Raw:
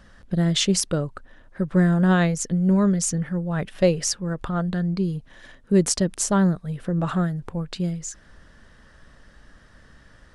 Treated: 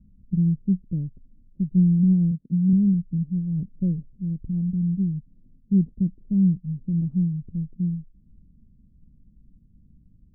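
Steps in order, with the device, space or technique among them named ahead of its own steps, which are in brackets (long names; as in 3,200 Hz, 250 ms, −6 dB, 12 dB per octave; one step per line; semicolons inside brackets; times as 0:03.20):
0:02.31–0:02.73: high-pass filter 110 Hz
the neighbour's flat through the wall (low-pass filter 240 Hz 24 dB per octave; parametric band 190 Hz +4 dB 0.93 octaves)
level −2.5 dB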